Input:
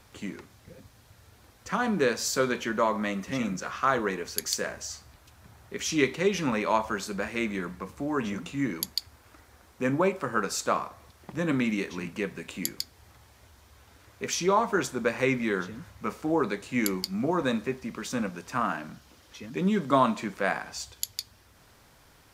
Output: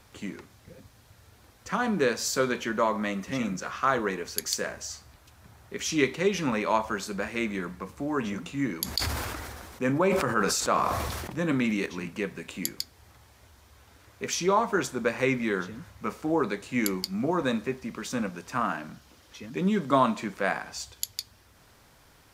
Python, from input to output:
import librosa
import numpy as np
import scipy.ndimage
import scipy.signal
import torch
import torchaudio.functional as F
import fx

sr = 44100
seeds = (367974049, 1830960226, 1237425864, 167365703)

y = fx.sustainer(x, sr, db_per_s=27.0, at=(8.83, 11.86))